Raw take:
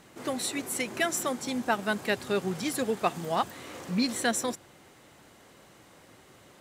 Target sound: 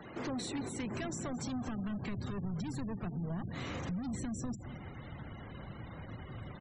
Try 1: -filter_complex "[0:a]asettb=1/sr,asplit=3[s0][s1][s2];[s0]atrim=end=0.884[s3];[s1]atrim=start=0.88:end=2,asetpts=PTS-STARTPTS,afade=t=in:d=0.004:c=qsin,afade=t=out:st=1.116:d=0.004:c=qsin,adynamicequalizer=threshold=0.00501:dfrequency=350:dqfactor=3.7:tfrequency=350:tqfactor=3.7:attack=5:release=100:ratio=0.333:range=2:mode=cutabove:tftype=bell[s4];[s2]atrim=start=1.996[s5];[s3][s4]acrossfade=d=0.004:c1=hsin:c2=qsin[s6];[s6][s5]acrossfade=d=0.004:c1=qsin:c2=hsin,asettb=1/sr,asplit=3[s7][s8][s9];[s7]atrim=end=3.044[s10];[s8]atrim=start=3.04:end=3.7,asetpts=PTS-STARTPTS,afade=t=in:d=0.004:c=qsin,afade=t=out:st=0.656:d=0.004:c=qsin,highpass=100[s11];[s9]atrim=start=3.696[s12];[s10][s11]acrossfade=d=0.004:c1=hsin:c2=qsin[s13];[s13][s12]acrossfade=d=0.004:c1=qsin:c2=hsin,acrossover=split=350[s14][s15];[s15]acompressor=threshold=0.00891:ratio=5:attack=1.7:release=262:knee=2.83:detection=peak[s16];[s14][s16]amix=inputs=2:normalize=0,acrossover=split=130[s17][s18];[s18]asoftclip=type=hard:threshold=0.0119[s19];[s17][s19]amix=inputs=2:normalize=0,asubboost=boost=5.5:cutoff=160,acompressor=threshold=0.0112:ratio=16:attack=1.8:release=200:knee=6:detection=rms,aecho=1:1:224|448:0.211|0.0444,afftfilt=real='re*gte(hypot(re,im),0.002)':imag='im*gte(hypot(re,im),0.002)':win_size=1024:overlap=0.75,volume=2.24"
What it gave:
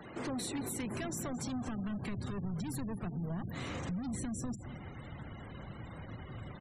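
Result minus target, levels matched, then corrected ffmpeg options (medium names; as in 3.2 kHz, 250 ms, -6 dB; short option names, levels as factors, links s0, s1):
8 kHz band +3.0 dB
-filter_complex "[0:a]asettb=1/sr,asplit=3[s0][s1][s2];[s0]atrim=end=0.884[s3];[s1]atrim=start=0.88:end=2,asetpts=PTS-STARTPTS,afade=t=in:d=0.004:c=qsin,afade=t=out:st=1.116:d=0.004:c=qsin,adynamicequalizer=threshold=0.00501:dfrequency=350:dqfactor=3.7:tfrequency=350:tqfactor=3.7:attack=5:release=100:ratio=0.333:range=2:mode=cutabove:tftype=bell[s4];[s2]atrim=start=1.996[s5];[s3][s4]acrossfade=d=0.004:c1=hsin:c2=qsin[s6];[s6][s5]acrossfade=d=0.004:c1=qsin:c2=hsin,asettb=1/sr,asplit=3[s7][s8][s9];[s7]atrim=end=3.044[s10];[s8]atrim=start=3.04:end=3.7,asetpts=PTS-STARTPTS,afade=t=in:d=0.004:c=qsin,afade=t=out:st=0.656:d=0.004:c=qsin,highpass=100[s11];[s9]atrim=start=3.696[s12];[s10][s11]acrossfade=d=0.004:c1=hsin:c2=qsin[s13];[s13][s12]acrossfade=d=0.004:c1=qsin:c2=hsin,acrossover=split=350[s14][s15];[s15]acompressor=threshold=0.00891:ratio=5:attack=1.7:release=262:knee=2.83:detection=peak[s16];[s14][s16]amix=inputs=2:normalize=0,acrossover=split=130[s17][s18];[s18]asoftclip=type=hard:threshold=0.0119[s19];[s17][s19]amix=inputs=2:normalize=0,asubboost=boost=5.5:cutoff=160,acompressor=threshold=0.0112:ratio=16:attack=1.8:release=200:knee=6:detection=rms,lowpass=f=8000:w=0.5412,lowpass=f=8000:w=1.3066,aecho=1:1:224|448:0.211|0.0444,afftfilt=real='re*gte(hypot(re,im),0.002)':imag='im*gte(hypot(re,im),0.002)':win_size=1024:overlap=0.75,volume=2.24"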